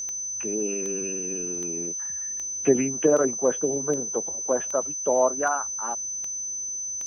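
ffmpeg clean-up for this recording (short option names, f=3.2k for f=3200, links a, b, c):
-af "adeclick=t=4,bandreject=f=6.1k:w=30"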